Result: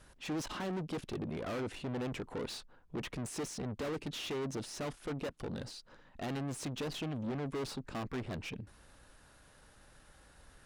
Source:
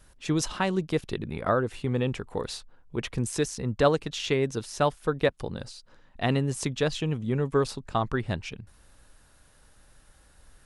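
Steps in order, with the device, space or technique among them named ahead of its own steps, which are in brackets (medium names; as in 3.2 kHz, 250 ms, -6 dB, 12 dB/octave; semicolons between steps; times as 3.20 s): tube preamp driven hard (valve stage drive 39 dB, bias 0.2; bass shelf 84 Hz -7 dB; treble shelf 5.7 kHz -7 dB); dynamic bell 280 Hz, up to +6 dB, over -58 dBFS, Q 1.2; trim +1.5 dB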